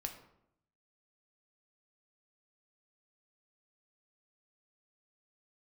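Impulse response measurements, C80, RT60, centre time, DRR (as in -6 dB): 11.5 dB, 0.75 s, 16 ms, 4.0 dB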